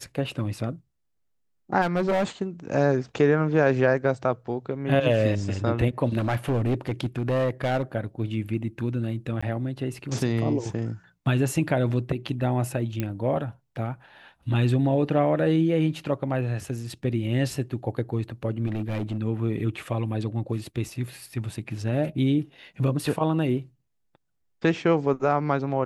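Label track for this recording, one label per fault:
1.810000	2.240000	clipped -20 dBFS
6.180000	7.830000	clipped -20 dBFS
9.410000	9.430000	gap 15 ms
13.000000	13.000000	pop -14 dBFS
18.660000	19.170000	clipped -24 dBFS

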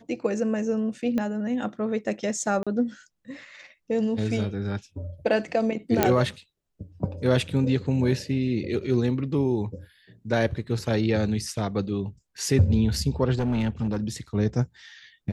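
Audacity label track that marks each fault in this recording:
1.180000	1.180000	pop -16 dBFS
2.630000	2.670000	gap 36 ms
6.030000	6.030000	pop -4 dBFS
10.670000	10.670000	gap 2.9 ms
13.380000	14.090000	clipped -20.5 dBFS

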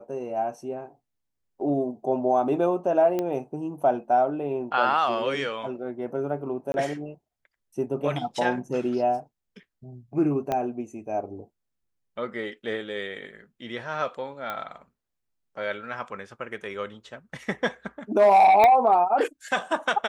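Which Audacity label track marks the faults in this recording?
3.190000	3.190000	pop -15 dBFS
6.720000	6.740000	gap 21 ms
10.520000	10.520000	pop -14 dBFS
14.500000	14.500000	pop -18 dBFS
18.640000	18.640000	pop -8 dBFS

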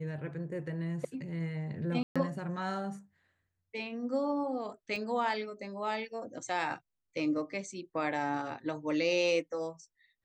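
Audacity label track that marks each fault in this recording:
2.030000	2.160000	gap 0.126 s
4.960000	4.960000	gap 2.7 ms

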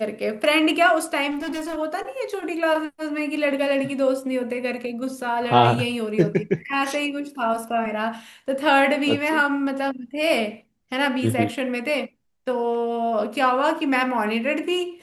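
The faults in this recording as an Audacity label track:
1.300000	1.780000	clipped -25 dBFS

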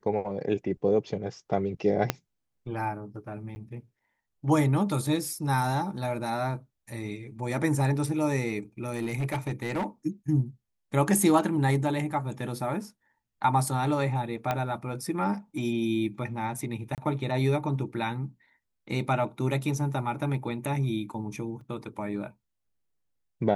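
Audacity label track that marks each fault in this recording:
2.100000	2.100000	pop -8 dBFS
3.550000	3.560000	gap 10 ms
8.830000	9.860000	clipped -25 dBFS
14.510000	14.510000	pop -14 dBFS
16.950000	16.980000	gap 28 ms
21.610000	21.610000	gap 3.5 ms

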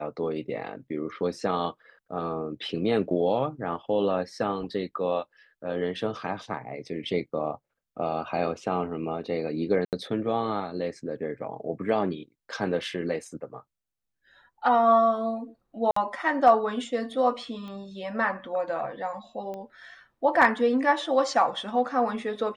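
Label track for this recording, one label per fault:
9.850000	9.930000	gap 78 ms
15.910000	15.960000	gap 54 ms
17.680000	17.680000	pop -30 dBFS
19.540000	19.540000	pop -26 dBFS

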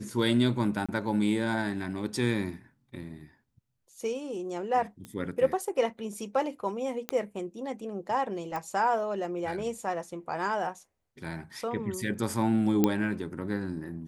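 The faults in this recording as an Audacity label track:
0.860000	0.890000	gap 26 ms
5.050000	5.050000	pop -27 dBFS
7.090000	7.090000	pop -14 dBFS
8.560000	8.560000	pop -21 dBFS
12.840000	12.840000	pop -10 dBFS

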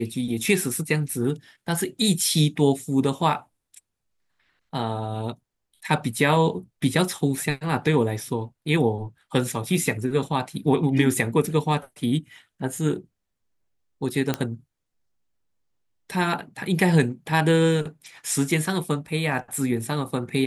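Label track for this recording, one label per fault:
14.340000	14.340000	pop -9 dBFS

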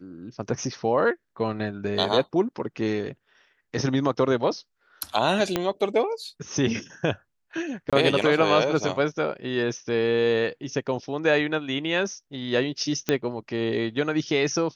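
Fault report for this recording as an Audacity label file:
5.560000	5.560000	pop -8 dBFS
7.900000	7.930000	gap 26 ms
13.090000	13.090000	pop -8 dBFS

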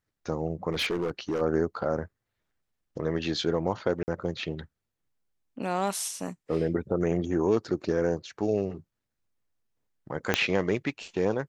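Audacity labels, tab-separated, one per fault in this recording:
0.720000	1.420000	clipped -24 dBFS
4.030000	4.080000	gap 49 ms
10.340000	10.340000	pop -7 dBFS

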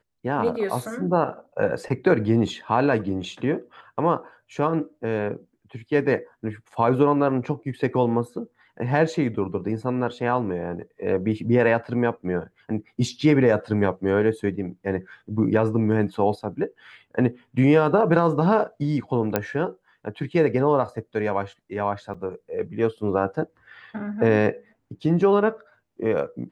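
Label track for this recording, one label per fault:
19.360000	19.360000	pop -7 dBFS
22.140000	22.150000	gap 5.3 ms

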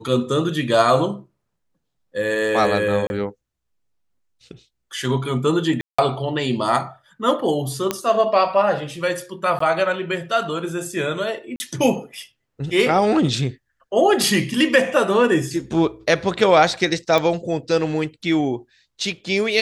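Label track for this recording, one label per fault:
3.070000	3.100000	gap 31 ms
5.810000	5.990000	gap 0.175 s
7.910000	7.910000	pop -6 dBFS
9.590000	9.600000	gap 14 ms
11.560000	11.600000	gap 40 ms
17.180000	17.180000	pop

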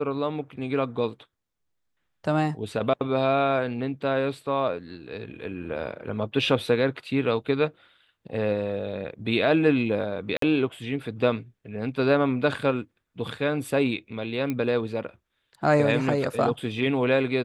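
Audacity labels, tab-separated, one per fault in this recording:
10.370000	10.420000	gap 53 ms
14.500000	14.500000	pop -16 dBFS

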